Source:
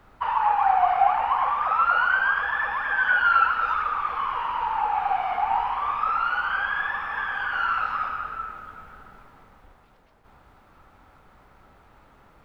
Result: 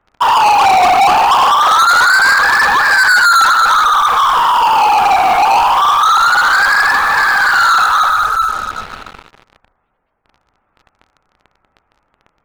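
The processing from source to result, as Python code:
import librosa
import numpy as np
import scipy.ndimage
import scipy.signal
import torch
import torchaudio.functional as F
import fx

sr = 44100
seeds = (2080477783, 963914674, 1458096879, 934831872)

y = fx.lowpass(x, sr, hz=3100.0, slope=6)
y = fx.low_shelf(y, sr, hz=380.0, db=-6.0)
y = fx.spec_gate(y, sr, threshold_db=-25, keep='strong')
y = fx.leveller(y, sr, passes=5)
y = y * librosa.db_to_amplitude(4.0)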